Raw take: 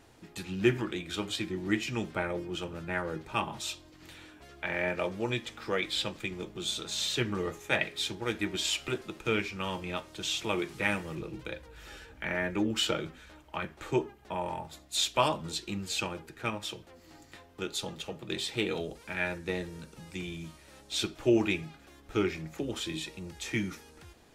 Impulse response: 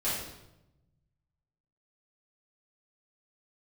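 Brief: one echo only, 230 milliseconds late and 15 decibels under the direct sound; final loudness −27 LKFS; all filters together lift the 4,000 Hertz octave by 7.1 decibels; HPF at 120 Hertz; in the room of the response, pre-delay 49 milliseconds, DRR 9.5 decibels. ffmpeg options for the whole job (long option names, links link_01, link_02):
-filter_complex "[0:a]highpass=120,equalizer=frequency=4000:width_type=o:gain=8.5,aecho=1:1:230:0.178,asplit=2[link_01][link_02];[1:a]atrim=start_sample=2205,adelay=49[link_03];[link_02][link_03]afir=irnorm=-1:irlink=0,volume=-17.5dB[link_04];[link_01][link_04]amix=inputs=2:normalize=0,volume=2dB"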